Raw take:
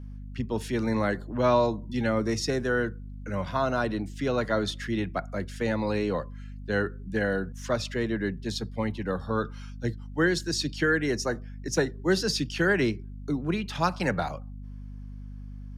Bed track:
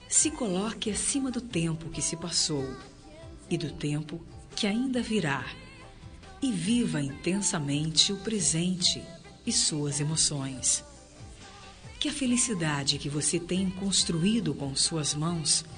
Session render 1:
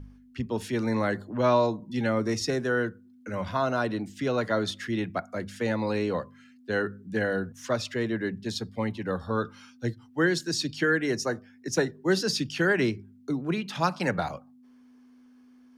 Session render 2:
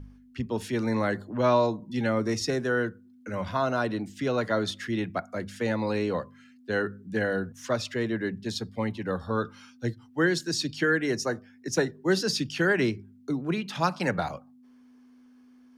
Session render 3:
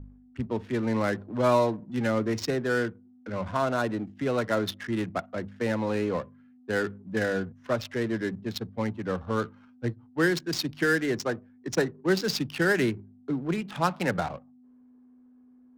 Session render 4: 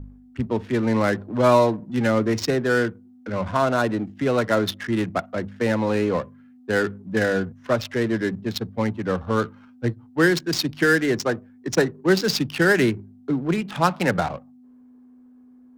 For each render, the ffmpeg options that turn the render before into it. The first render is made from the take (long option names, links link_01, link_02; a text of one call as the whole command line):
ffmpeg -i in.wav -af "bandreject=frequency=50:width_type=h:width=4,bandreject=frequency=100:width_type=h:width=4,bandreject=frequency=150:width_type=h:width=4,bandreject=frequency=200:width_type=h:width=4" out.wav
ffmpeg -i in.wav -af anull out.wav
ffmpeg -i in.wav -af "acrusher=bits=7:mode=log:mix=0:aa=0.000001,adynamicsmooth=sensitivity=8:basefreq=630" out.wav
ffmpeg -i in.wav -af "volume=6dB" out.wav